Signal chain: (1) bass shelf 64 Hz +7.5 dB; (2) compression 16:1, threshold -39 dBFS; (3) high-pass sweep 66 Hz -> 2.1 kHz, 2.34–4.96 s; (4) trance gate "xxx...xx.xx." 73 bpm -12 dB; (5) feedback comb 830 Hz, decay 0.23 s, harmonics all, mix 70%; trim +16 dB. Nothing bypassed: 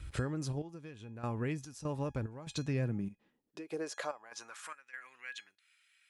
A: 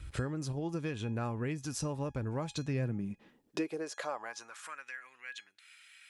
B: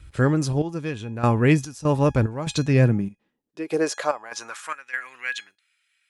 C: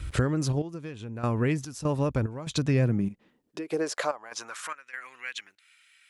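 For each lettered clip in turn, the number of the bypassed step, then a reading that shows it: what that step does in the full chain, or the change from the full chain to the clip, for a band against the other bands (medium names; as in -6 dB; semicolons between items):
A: 4, 8 kHz band +1.5 dB; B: 2, mean gain reduction 12.5 dB; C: 5, loudness change +10.0 LU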